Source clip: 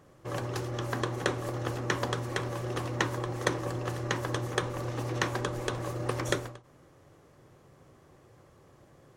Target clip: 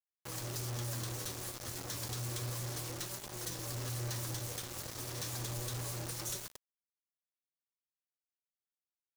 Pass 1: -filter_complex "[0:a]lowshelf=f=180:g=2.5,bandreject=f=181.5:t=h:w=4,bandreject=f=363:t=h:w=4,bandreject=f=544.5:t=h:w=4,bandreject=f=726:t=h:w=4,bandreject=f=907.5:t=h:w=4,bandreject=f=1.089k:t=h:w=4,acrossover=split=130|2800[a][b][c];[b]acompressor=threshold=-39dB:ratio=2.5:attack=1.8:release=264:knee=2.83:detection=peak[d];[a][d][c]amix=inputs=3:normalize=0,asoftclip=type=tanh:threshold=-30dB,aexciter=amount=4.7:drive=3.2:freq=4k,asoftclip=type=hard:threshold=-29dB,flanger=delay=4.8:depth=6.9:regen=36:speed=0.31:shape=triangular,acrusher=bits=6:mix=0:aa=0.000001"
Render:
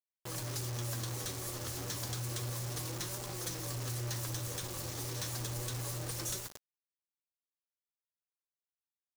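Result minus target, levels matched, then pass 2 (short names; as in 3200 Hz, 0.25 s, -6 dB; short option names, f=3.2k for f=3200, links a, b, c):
soft clip: distortion -5 dB
-filter_complex "[0:a]lowshelf=f=180:g=2.5,bandreject=f=181.5:t=h:w=4,bandreject=f=363:t=h:w=4,bandreject=f=544.5:t=h:w=4,bandreject=f=726:t=h:w=4,bandreject=f=907.5:t=h:w=4,bandreject=f=1.089k:t=h:w=4,acrossover=split=130|2800[a][b][c];[b]acompressor=threshold=-39dB:ratio=2.5:attack=1.8:release=264:knee=2.83:detection=peak[d];[a][d][c]amix=inputs=3:normalize=0,asoftclip=type=tanh:threshold=-36.5dB,aexciter=amount=4.7:drive=3.2:freq=4k,asoftclip=type=hard:threshold=-29dB,flanger=delay=4.8:depth=6.9:regen=36:speed=0.31:shape=triangular,acrusher=bits=6:mix=0:aa=0.000001"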